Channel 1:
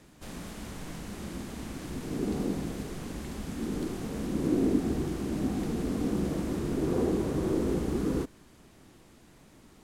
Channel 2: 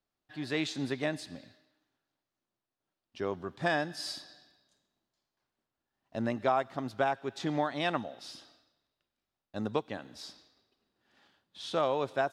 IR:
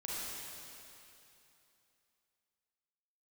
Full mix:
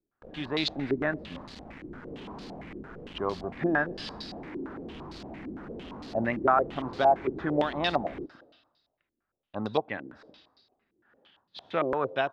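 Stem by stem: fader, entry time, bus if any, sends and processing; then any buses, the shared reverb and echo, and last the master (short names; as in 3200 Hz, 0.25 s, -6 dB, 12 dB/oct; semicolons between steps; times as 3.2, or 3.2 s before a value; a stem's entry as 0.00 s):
-17.0 dB, 0.00 s, no send, companded quantiser 2-bit
+1.0 dB, 0.00 s, no send, dry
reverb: off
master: stepped low-pass 8.8 Hz 350–4400 Hz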